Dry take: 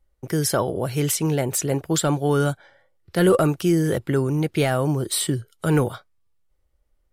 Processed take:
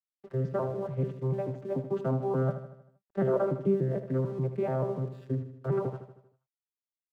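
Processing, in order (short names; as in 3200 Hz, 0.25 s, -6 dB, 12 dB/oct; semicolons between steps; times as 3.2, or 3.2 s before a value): arpeggiated vocoder bare fifth, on C3, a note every 0.146 s; LPF 1100 Hz 12 dB/oct; low shelf 380 Hz -11 dB; crossover distortion -58.5 dBFS; on a send: feedback echo 78 ms, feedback 52%, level -10.5 dB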